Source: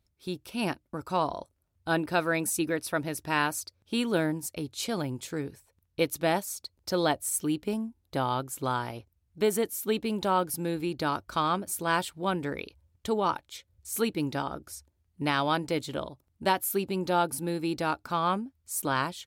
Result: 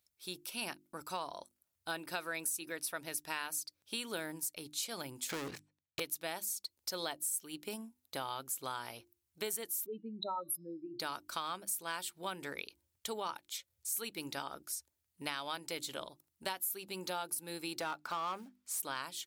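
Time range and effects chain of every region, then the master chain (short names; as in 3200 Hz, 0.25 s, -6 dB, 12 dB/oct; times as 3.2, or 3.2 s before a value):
5.29–6 LPF 3400 Hz + sample leveller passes 5
9.86–11 spectral contrast raised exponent 3.1 + de-hum 287.3 Hz, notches 20
17.8–18.8 short-mantissa float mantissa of 4-bit + overdrive pedal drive 16 dB, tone 1300 Hz, clips at -14.5 dBFS
whole clip: tilt +3.5 dB/oct; notches 50/100/150/200/250/300/350 Hz; compressor 4:1, threshold -30 dBFS; gain -6 dB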